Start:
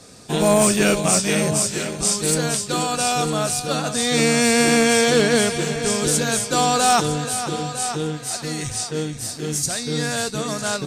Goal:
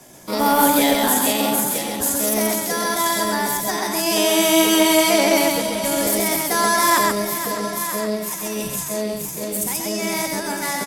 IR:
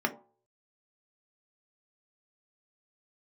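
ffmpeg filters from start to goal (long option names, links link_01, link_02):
-filter_complex "[0:a]acrossover=split=180|3000[link_01][link_02][link_03];[link_01]acompressor=threshold=-33dB:ratio=2[link_04];[link_04][link_02][link_03]amix=inputs=3:normalize=0,asetrate=60591,aresample=44100,atempo=0.727827,aecho=1:1:84.55|131.2:0.282|0.708,volume=-1dB"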